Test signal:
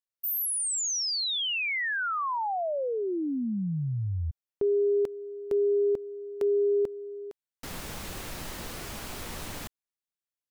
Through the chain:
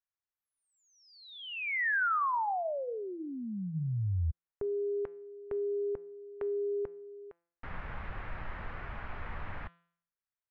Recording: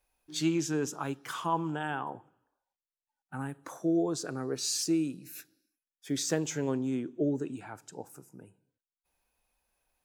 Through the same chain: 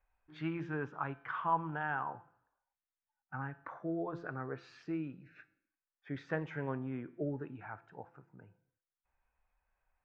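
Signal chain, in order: LPF 1900 Hz 24 dB/oct; bell 310 Hz -14 dB 2.4 oct; de-hum 170.4 Hz, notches 37; gain +4 dB

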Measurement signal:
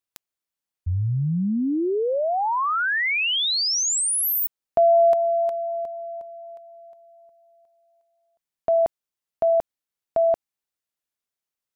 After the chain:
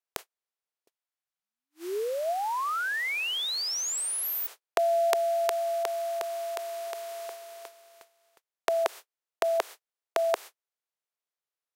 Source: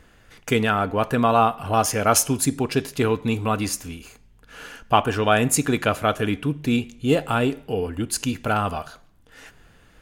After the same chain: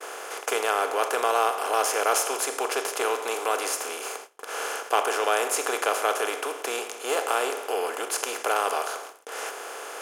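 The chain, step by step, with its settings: per-bin compression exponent 0.4; Chebyshev high-pass 400 Hz, order 4; gate -31 dBFS, range -49 dB; gain -8.5 dB

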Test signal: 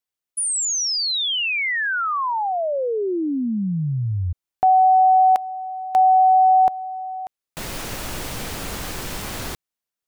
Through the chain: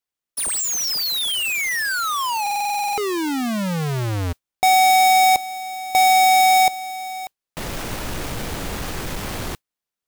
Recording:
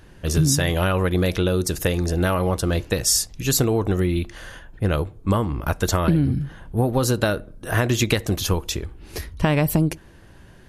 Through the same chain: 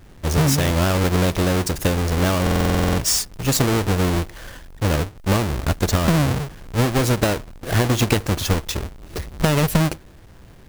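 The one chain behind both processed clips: half-waves squared off; modulation noise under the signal 30 dB; stuck buffer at 2.42, samples 2048, times 11; gain -3 dB

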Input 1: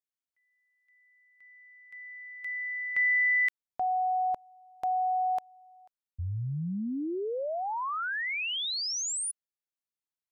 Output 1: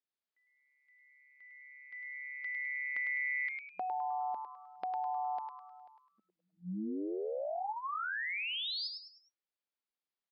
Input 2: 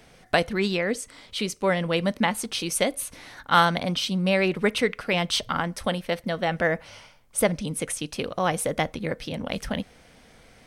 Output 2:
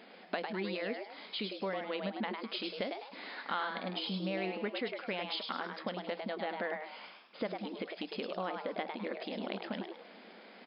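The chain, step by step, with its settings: FFT band-pass 180–5100 Hz; high shelf 2900 Hz -2.5 dB; compressor 3:1, threshold -39 dBFS; frequency-shifting echo 0.103 s, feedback 37%, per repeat +140 Hz, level -5.5 dB

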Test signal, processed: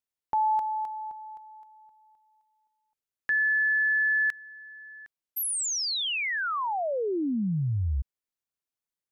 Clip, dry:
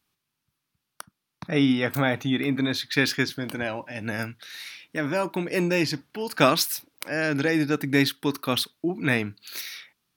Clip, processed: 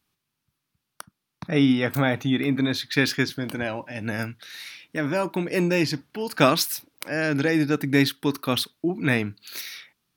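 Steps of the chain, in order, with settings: low shelf 360 Hz +3 dB

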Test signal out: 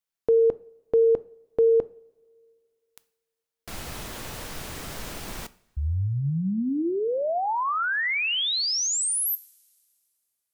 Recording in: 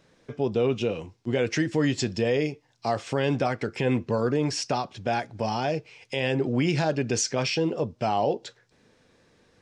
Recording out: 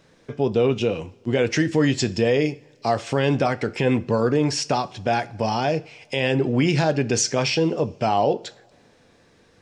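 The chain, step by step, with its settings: two-slope reverb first 0.46 s, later 2.3 s, from -20 dB, DRR 16 dB; gain +4.5 dB

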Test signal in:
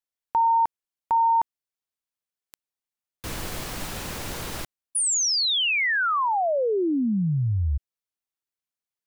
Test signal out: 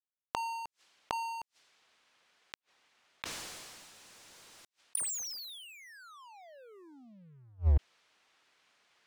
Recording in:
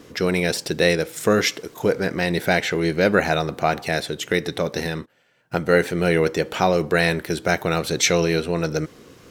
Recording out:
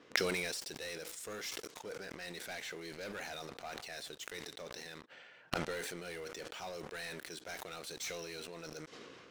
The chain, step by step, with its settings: RIAA curve recording; low-pass opened by the level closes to 2500 Hz, open at -17 dBFS; bell 14000 Hz -11.5 dB 0.87 oct; sample leveller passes 5; flipped gate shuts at -16 dBFS, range -37 dB; soft clip -13 dBFS; sustainer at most 25 dB/s; gain -2 dB

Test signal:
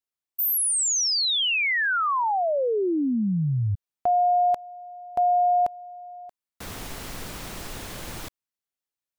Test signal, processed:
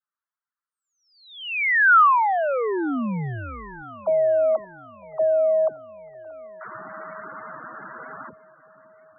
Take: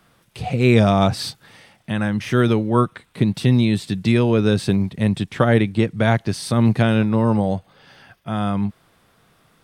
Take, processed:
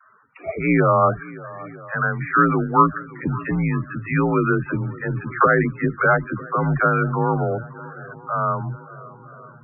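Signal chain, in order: bell 1400 Hz +12.5 dB 0.94 oct; dispersion lows, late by 69 ms, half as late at 420 Hz; mistuned SSB -78 Hz 220–2500 Hz; on a send: swung echo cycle 0.954 s, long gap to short 1.5:1, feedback 52%, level -19.5 dB; on the sum: loudest bins only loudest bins 32; gain -1.5 dB

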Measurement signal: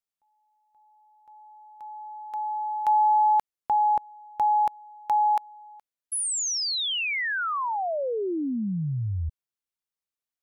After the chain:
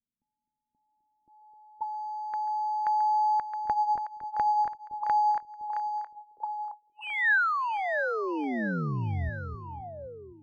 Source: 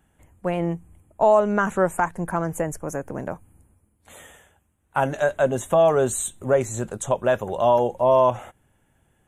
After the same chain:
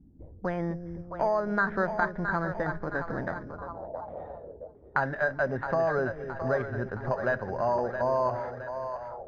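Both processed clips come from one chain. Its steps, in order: low shelf 140 Hz +6 dB; compressor 2:1, threshold -39 dBFS; split-band echo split 470 Hz, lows 0.257 s, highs 0.668 s, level -8 dB; careless resampling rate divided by 8×, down filtered, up hold; envelope low-pass 230–1700 Hz up, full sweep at -37.5 dBFS; gain +2 dB

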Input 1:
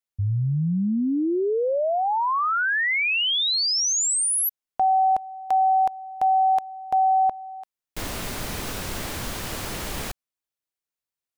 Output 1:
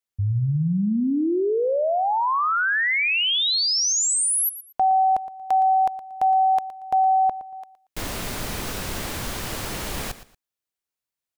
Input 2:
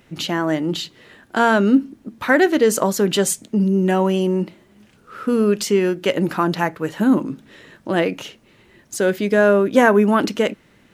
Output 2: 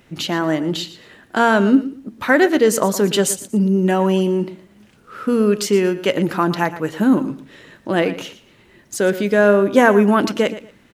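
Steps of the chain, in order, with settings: feedback echo 0.116 s, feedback 23%, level -14.5 dB; gain +1 dB

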